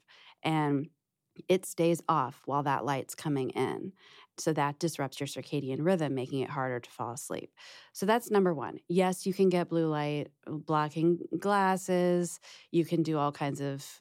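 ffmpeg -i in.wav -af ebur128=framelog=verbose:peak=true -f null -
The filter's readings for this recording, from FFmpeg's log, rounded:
Integrated loudness:
  I:         -30.9 LUFS
  Threshold: -41.3 LUFS
Loudness range:
  LRA:         3.6 LU
  Threshold: -51.3 LUFS
  LRA low:   -33.2 LUFS
  LRA high:  -29.6 LUFS
True peak:
  Peak:      -12.7 dBFS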